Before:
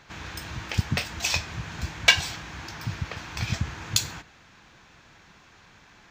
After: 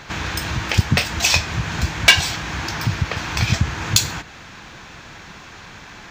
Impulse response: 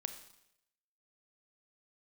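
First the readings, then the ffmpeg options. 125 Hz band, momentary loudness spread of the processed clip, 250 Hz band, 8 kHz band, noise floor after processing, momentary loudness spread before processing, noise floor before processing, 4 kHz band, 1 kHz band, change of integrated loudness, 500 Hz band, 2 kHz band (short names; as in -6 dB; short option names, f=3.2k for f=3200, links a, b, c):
+10.0 dB, 23 LU, +10.0 dB, +8.5 dB, -40 dBFS, 17 LU, -55 dBFS, +7.5 dB, +10.0 dB, +8.0 dB, +9.0 dB, +7.5 dB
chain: -filter_complex "[0:a]asplit=2[a][b];[b]acompressor=threshold=-39dB:ratio=6,volume=0dB[c];[a][c]amix=inputs=2:normalize=0,asoftclip=type=tanh:threshold=-10dB,volume=8.5dB"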